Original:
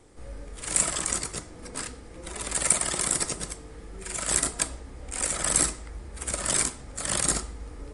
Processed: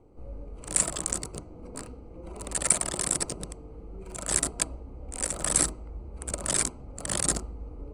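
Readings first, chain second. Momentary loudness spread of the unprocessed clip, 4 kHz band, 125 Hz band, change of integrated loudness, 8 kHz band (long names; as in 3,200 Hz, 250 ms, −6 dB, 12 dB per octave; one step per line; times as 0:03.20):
19 LU, −3.5 dB, 0.0 dB, −1.5 dB, −2.0 dB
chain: adaptive Wiener filter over 25 samples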